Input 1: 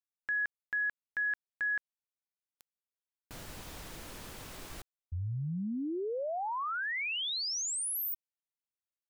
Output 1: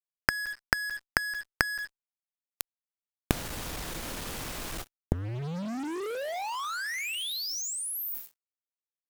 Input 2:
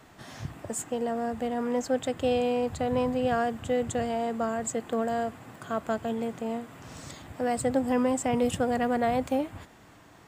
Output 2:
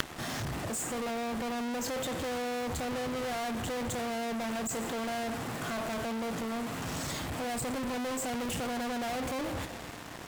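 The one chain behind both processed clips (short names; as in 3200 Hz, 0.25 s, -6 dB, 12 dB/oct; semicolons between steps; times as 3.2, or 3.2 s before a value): two-slope reverb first 0.55 s, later 4 s, from -27 dB, DRR 9 dB; fuzz box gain 51 dB, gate -53 dBFS; flipped gate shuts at -22 dBFS, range -27 dB; gain +7 dB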